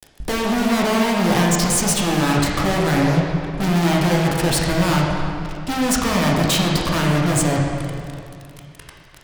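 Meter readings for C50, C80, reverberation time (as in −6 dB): 0.5 dB, 2.0 dB, 2.4 s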